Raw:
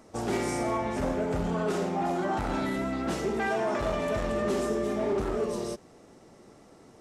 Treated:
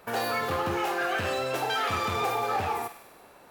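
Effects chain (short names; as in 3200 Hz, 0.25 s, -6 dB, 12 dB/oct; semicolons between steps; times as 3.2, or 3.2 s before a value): thinning echo 0.1 s, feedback 79%, high-pass 470 Hz, level -10 dB; speed mistake 7.5 ips tape played at 15 ips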